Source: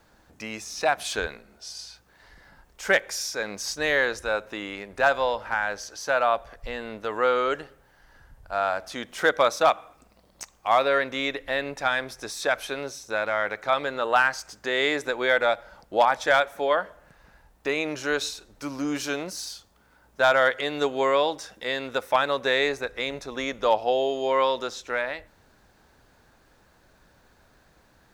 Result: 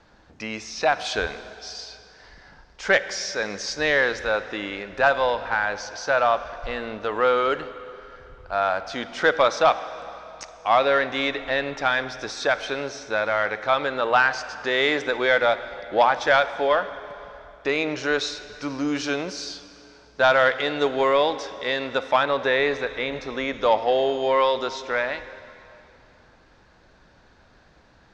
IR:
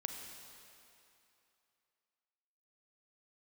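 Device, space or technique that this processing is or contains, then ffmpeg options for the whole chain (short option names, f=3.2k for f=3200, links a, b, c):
saturated reverb return: -filter_complex "[0:a]asplit=2[a][b];[1:a]atrim=start_sample=2205[c];[b][c]afir=irnorm=-1:irlink=0,asoftclip=type=tanh:threshold=-22.5dB,volume=-3.5dB[d];[a][d]amix=inputs=2:normalize=0,lowpass=f=5.8k:w=0.5412,lowpass=f=5.8k:w=1.3066,asettb=1/sr,asplit=3[e][f][g];[e]atrim=end=22.234[h];[f]atrim=start=22.23:end=23.61,asetpts=PTS-STARTPTS,afade=t=in:d=0.004:c=qsin,afade=t=out:st=1.376:d=0.004:c=qsin,acrossover=split=3300[i][j];[j]acompressor=threshold=-41dB:ratio=4:attack=1:release=60[k];[i][k]amix=inputs=2:normalize=0[l];[g]atrim=start=23.606[m];[h][l]acrossfade=d=0.004:c1=hsin:c2=qsin[n];[n][m]acrossfade=d=0.004:c1=qsin:c2=hsin"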